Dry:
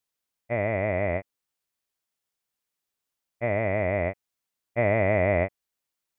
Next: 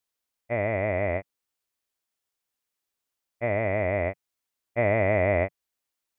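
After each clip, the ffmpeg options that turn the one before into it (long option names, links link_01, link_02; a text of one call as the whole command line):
ffmpeg -i in.wav -af "equalizer=frequency=160:width_type=o:width=0.29:gain=-10.5" out.wav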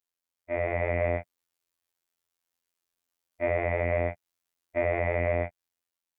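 ffmpeg -i in.wav -af "afftfilt=real='hypot(re,im)*cos(PI*b)':imag='0':win_size=2048:overlap=0.75,alimiter=limit=-16dB:level=0:latency=1:release=327,dynaudnorm=framelen=130:gausssize=9:maxgain=6dB,volume=-3dB" out.wav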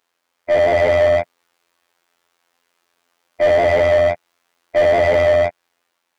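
ffmpeg -i in.wav -filter_complex "[0:a]asplit=2[link_01][link_02];[link_02]highpass=frequency=720:poles=1,volume=28dB,asoftclip=type=tanh:threshold=-12.5dB[link_03];[link_01][link_03]amix=inputs=2:normalize=0,lowpass=frequency=1100:poles=1,volume=-6dB,volume=7.5dB" out.wav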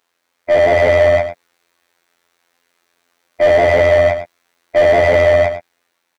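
ffmpeg -i in.wav -af "aecho=1:1:105:0.299,volume=3dB" out.wav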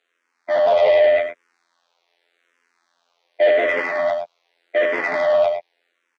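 ffmpeg -i in.wav -filter_complex "[0:a]asoftclip=type=tanh:threshold=-9.5dB,highpass=360,lowpass=5100,asplit=2[link_01][link_02];[link_02]afreqshift=-0.85[link_03];[link_01][link_03]amix=inputs=2:normalize=1,volume=1.5dB" out.wav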